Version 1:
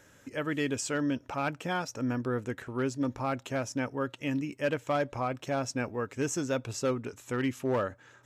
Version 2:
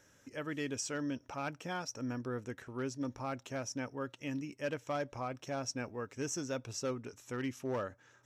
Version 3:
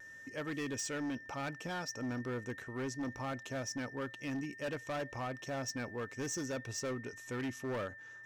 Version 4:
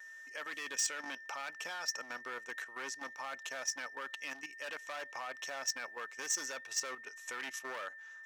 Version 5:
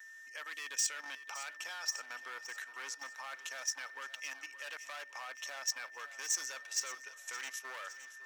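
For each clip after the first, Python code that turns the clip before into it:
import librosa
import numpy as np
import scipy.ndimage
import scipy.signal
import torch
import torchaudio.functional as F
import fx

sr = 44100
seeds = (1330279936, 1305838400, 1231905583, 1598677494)

y1 = fx.peak_eq(x, sr, hz=5700.0, db=9.5, octaves=0.24)
y1 = y1 * librosa.db_to_amplitude(-7.5)
y2 = np.clip(y1, -10.0 ** (-36.0 / 20.0), 10.0 ** (-36.0 / 20.0))
y2 = y2 + 10.0 ** (-51.0 / 20.0) * np.sin(2.0 * np.pi * 1800.0 * np.arange(len(y2)) / sr)
y2 = fx.vibrato(y2, sr, rate_hz=0.47, depth_cents=11.0)
y2 = y2 * librosa.db_to_amplitude(1.5)
y3 = scipy.signal.sosfilt(scipy.signal.butter(2, 970.0, 'highpass', fs=sr, output='sos'), y2)
y3 = fx.level_steps(y3, sr, step_db=10)
y3 = y3 * librosa.db_to_amplitude(8.5)
y4 = fx.highpass(y3, sr, hz=1200.0, slope=6)
y4 = fx.high_shelf(y4, sr, hz=9200.0, db=3.5)
y4 = fx.echo_feedback(y4, sr, ms=566, feedback_pct=58, wet_db=-15)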